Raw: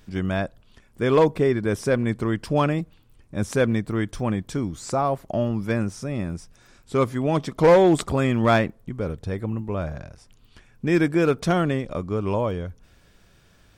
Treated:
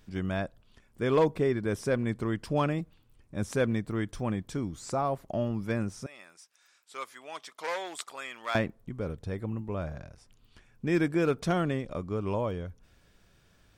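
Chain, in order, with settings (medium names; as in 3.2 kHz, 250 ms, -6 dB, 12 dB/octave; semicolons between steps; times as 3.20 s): 6.06–8.55 s: Bessel high-pass 1.5 kHz, order 2; trim -6.5 dB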